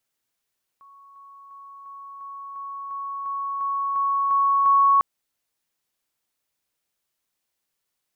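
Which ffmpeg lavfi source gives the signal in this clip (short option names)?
-f lavfi -i "aevalsrc='pow(10,(-46.5+3*floor(t/0.35))/20)*sin(2*PI*1110*t)':d=4.2:s=44100"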